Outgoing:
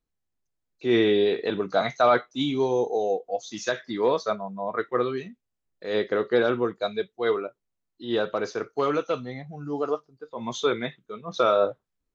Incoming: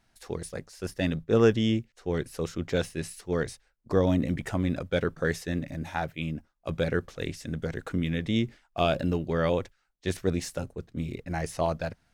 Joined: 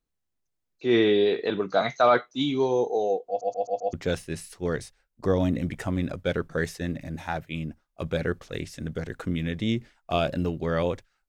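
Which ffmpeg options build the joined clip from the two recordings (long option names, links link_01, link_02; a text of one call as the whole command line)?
ffmpeg -i cue0.wav -i cue1.wav -filter_complex "[0:a]apad=whole_dur=11.28,atrim=end=11.28,asplit=5[link_01][link_02][link_03][link_04][link_05];[link_01]atrim=end=3.412[link_06];[link_02]atrim=start=3.278:end=3.412[link_07];[link_03]atrim=start=3.278:end=3.412[link_08];[link_04]atrim=start=3.278:end=3.412[link_09];[link_05]atrim=start=3.278:end=3.412[link_10];[1:a]atrim=start=2.598:end=9.95[link_11];[link_06][link_07]acrossfade=duration=0.004:curve1=hsin:curve2=hsin[link_12];[link_12][link_08]acrossfade=duration=0.004:curve1=hsin:curve2=hsin[link_13];[link_13][link_09]acrossfade=duration=0.004:curve1=hsin:curve2=hsin[link_14];[link_14][link_10]acrossfade=duration=0.004:curve1=hsin:curve2=hsin[link_15];[link_15][link_11]acrossfade=duration=0.004:curve1=hsin:curve2=hsin" out.wav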